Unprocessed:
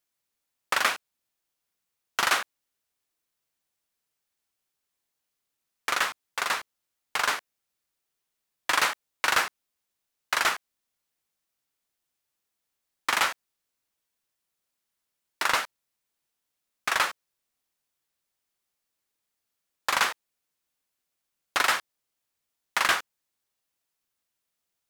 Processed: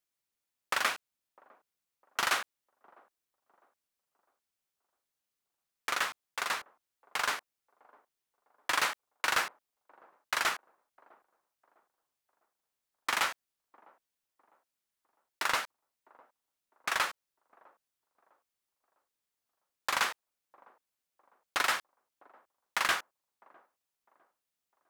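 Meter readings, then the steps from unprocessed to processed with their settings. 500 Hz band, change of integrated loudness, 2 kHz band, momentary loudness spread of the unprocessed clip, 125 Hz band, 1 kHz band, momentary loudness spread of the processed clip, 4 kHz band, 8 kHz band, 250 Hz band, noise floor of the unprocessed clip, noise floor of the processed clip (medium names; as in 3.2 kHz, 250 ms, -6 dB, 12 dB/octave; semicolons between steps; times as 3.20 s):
-5.5 dB, -5.5 dB, -5.5 dB, 10 LU, -5.5 dB, -5.5 dB, 10 LU, -5.5 dB, -5.5 dB, -5.5 dB, -83 dBFS, under -85 dBFS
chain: block-companded coder 7-bit; feedback echo behind a band-pass 654 ms, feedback 36%, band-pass 460 Hz, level -22 dB; trim -5.5 dB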